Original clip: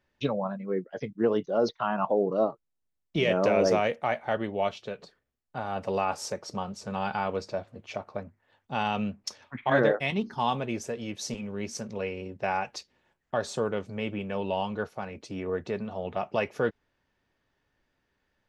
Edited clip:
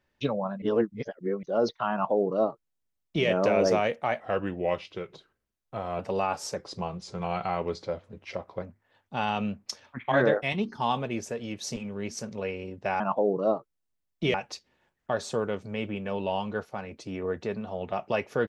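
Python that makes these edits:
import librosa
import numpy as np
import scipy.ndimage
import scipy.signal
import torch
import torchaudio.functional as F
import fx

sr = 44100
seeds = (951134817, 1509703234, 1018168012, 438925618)

y = fx.edit(x, sr, fx.reverse_span(start_s=0.62, length_s=0.81),
    fx.duplicate(start_s=1.93, length_s=1.34, to_s=12.58),
    fx.speed_span(start_s=4.2, length_s=1.58, speed=0.88),
    fx.speed_span(start_s=6.35, length_s=1.85, speed=0.9), tone=tone)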